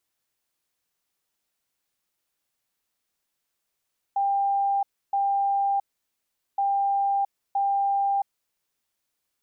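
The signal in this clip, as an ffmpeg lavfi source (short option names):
-f lavfi -i "aevalsrc='0.0944*sin(2*PI*795*t)*clip(min(mod(mod(t,2.42),0.97),0.67-mod(mod(t,2.42),0.97))/0.005,0,1)*lt(mod(t,2.42),1.94)':d=4.84:s=44100"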